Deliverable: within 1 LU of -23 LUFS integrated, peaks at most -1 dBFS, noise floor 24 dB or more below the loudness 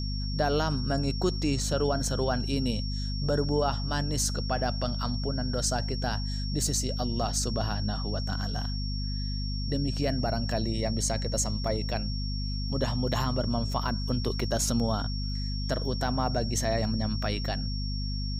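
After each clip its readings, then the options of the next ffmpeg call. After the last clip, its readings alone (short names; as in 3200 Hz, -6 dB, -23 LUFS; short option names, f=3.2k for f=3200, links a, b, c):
hum 50 Hz; harmonics up to 250 Hz; hum level -29 dBFS; steady tone 5500 Hz; tone level -38 dBFS; loudness -29.5 LUFS; peak -13.0 dBFS; loudness target -23.0 LUFS
-> -af "bandreject=f=50:t=h:w=6,bandreject=f=100:t=h:w=6,bandreject=f=150:t=h:w=6,bandreject=f=200:t=h:w=6,bandreject=f=250:t=h:w=6"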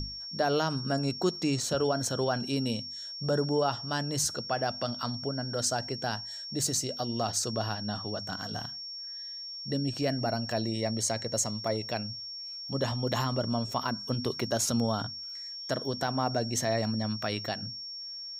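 hum none; steady tone 5500 Hz; tone level -38 dBFS
-> -af "bandreject=f=5.5k:w=30"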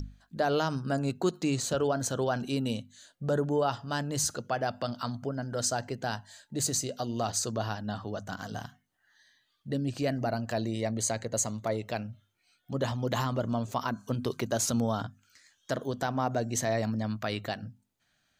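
steady tone none; loudness -31.5 LUFS; peak -15.0 dBFS; loudness target -23.0 LUFS
-> -af "volume=8.5dB"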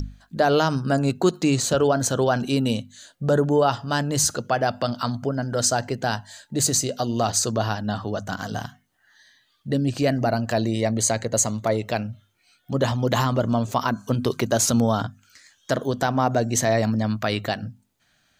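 loudness -23.0 LUFS; peak -6.5 dBFS; noise floor -66 dBFS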